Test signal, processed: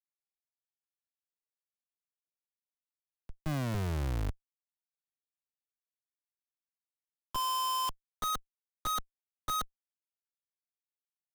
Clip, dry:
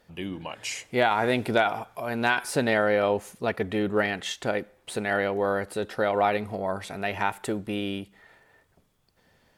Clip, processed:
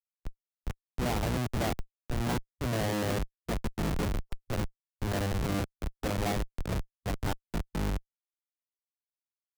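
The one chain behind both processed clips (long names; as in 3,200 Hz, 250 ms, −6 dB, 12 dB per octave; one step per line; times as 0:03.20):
sub-octave generator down 1 octave, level −2 dB
treble cut that deepens with the level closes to 1,100 Hz, closed at −19.5 dBFS
bass and treble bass +4 dB, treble +3 dB
all-pass dispersion lows, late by 50 ms, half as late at 1,700 Hz
comparator with hysteresis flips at −22 dBFS
noise reduction from a noise print of the clip's start 14 dB
multiband upward and downward expander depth 40%
level −2 dB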